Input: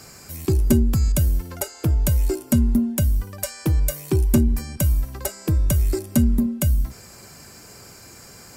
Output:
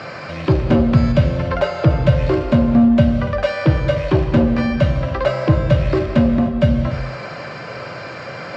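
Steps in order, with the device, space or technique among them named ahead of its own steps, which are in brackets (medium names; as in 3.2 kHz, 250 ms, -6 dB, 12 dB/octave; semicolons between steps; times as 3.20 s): overdrive pedal into a guitar cabinet (overdrive pedal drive 26 dB, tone 1.2 kHz, clips at -7 dBFS; cabinet simulation 80–4100 Hz, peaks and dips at 130 Hz +9 dB, 250 Hz -4 dB, 400 Hz -8 dB, 560 Hz +7 dB, 830 Hz -5 dB); gated-style reverb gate 330 ms flat, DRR 5.5 dB; trim +3.5 dB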